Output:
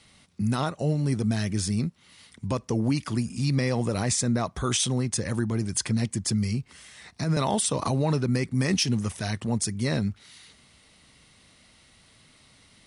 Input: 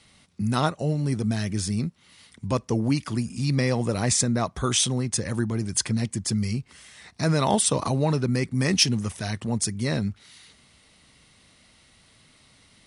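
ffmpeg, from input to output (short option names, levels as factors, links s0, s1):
-filter_complex "[0:a]alimiter=limit=0.178:level=0:latency=1:release=67,asettb=1/sr,asplit=3[s0][s1][s2];[s0]atrim=end=6.304[s3];[s1]atrim=start=6.3:end=7.37,asetpts=PTS-STARTPTS,afade=t=in:d=0.004:c=qsin,afade=t=out:st=1.066:d=0.004:c=qsin,acrossover=split=280[s4][s5];[s5]acompressor=threshold=0.02:ratio=3[s6];[s4][s6]amix=inputs=2:normalize=0[s7];[s2]atrim=start=7.366[s8];[s3][s7]acrossfade=d=0.004:c1=hsin:c2=qsin[s9];[s9][s8]acrossfade=d=0.004:c1=qsin:c2=hsin"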